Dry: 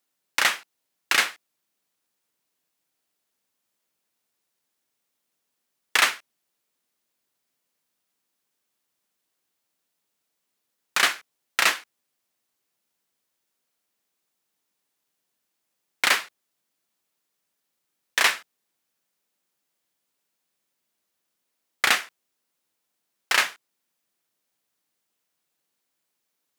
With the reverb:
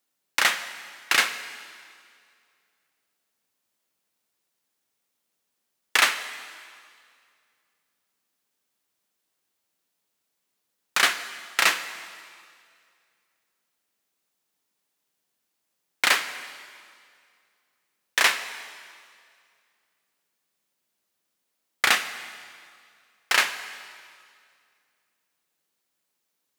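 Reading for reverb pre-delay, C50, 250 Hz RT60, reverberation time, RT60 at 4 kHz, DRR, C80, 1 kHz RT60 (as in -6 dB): 4 ms, 11.5 dB, 2.1 s, 2.2 s, 2.1 s, 10.5 dB, 12.5 dB, 2.2 s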